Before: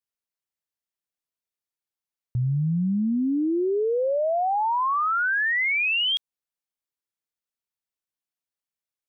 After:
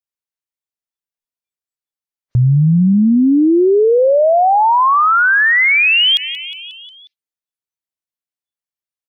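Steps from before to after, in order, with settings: frequency-shifting echo 180 ms, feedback 63%, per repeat +41 Hz, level -22.5 dB; spectral noise reduction 24 dB; loudness maximiser +27.5 dB; trim -6.5 dB

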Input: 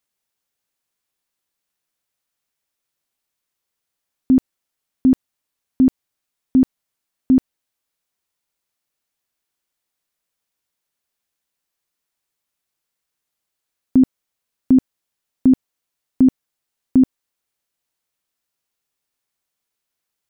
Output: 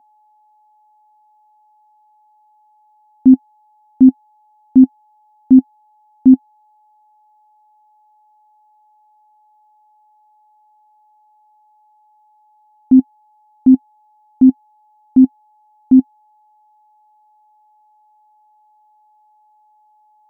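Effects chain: reverse the whole clip; whistle 850 Hz -48 dBFS; small resonant body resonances 260/740 Hz, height 14 dB, ringing for 45 ms; trim -8.5 dB

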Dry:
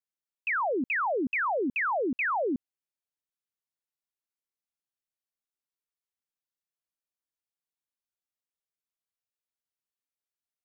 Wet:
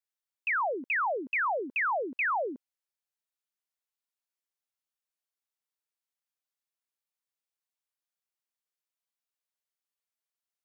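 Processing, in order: high-pass 520 Hz 12 dB/octave

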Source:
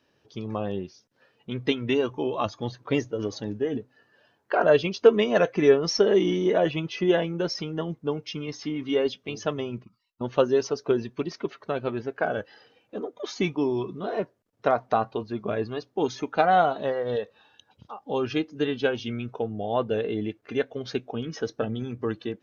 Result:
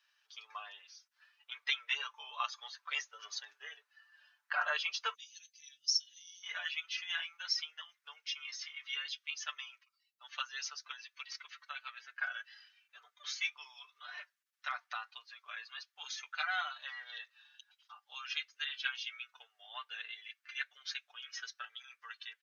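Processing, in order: inverse Chebyshev high-pass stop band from 270 Hz, stop band 70 dB, from 5.13 s stop band from 1.1 kHz, from 6.42 s stop band from 340 Hz; comb 6.8 ms, depth 85%; trim -4 dB

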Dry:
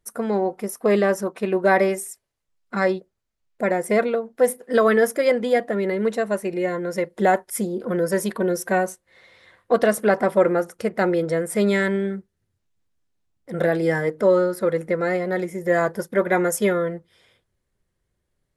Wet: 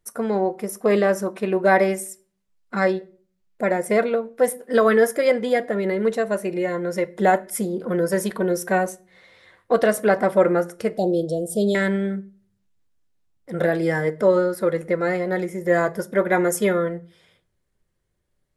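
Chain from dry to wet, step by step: 10.97–11.75 s: elliptic band-stop 720–3300 Hz, stop band 40 dB; reverberation RT60 0.45 s, pre-delay 5 ms, DRR 13.5 dB

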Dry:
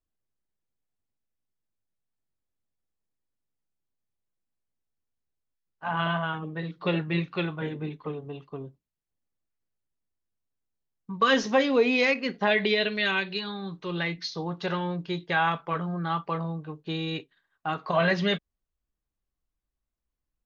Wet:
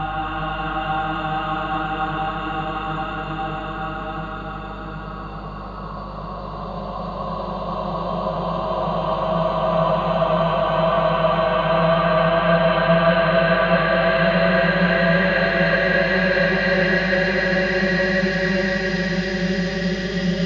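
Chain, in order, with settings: Paulstretch 39×, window 0.25 s, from 17.68 s; hum 50 Hz, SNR 12 dB; two-band feedback delay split 1 kHz, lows 405 ms, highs 276 ms, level -4 dB; trim +3 dB

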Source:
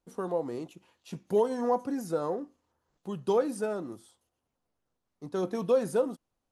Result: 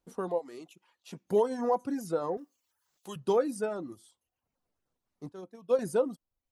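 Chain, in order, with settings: 0.38–1.24 s: high-pass 880 Hz -> 250 Hz 6 dB/octave; reverb removal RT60 0.61 s; 2.37–3.16 s: tilt EQ +4 dB/octave; 5.32–5.79 s: upward expansion 2.5:1, over -32 dBFS

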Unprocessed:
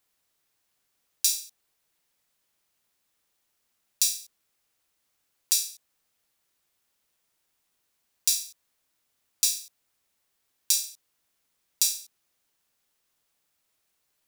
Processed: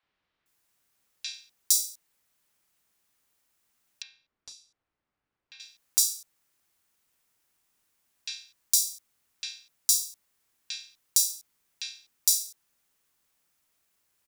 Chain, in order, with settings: three bands offset in time mids, lows, highs 30/460 ms, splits 570/3800 Hz; in parallel at -7.5 dB: hard clipper -14.5 dBFS, distortion -14 dB; 4.02–5.60 s: on the sum: tape spacing loss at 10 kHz 38 dB; trim -1 dB

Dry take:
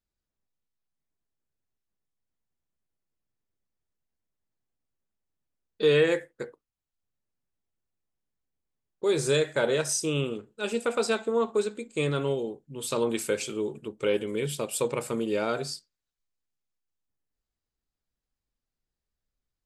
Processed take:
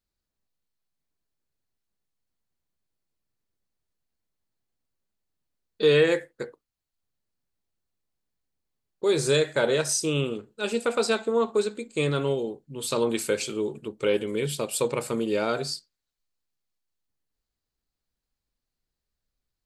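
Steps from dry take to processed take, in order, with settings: peaking EQ 4.3 kHz +5.5 dB 0.25 oct; trim +2 dB

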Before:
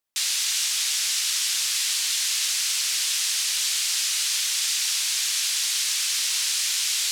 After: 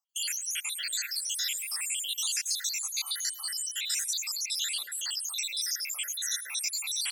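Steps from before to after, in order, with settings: random holes in the spectrogram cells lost 84%; frequency-shifting echo 106 ms, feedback 48%, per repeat -61 Hz, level -23 dB; 3.01–3.97 s: whistle 3 kHz -52 dBFS

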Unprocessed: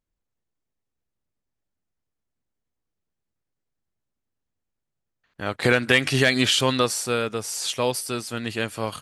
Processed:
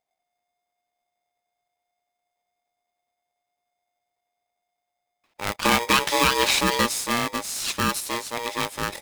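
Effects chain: saturation -6 dBFS, distortion -23 dB; polarity switched at an audio rate 710 Hz

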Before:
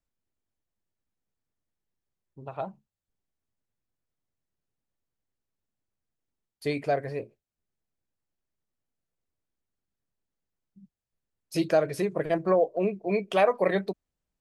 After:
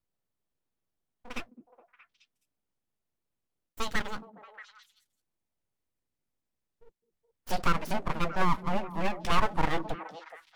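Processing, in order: gliding tape speed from 197% -> 76%; full-wave rectifier; repeats whose band climbs or falls 210 ms, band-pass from 240 Hz, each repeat 1.4 oct, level -8 dB

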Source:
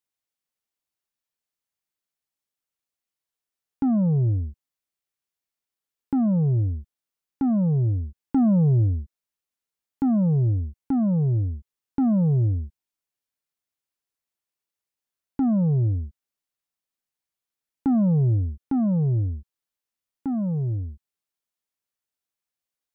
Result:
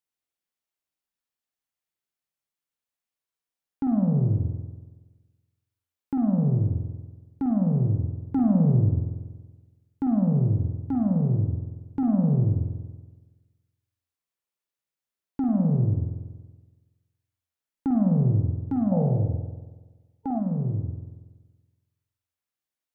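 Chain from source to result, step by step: spring tank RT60 1.3 s, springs 47 ms, chirp 50 ms, DRR 2 dB; time-frequency box 18.92–20.39 s, 440–910 Hz +11 dB; trim -3.5 dB

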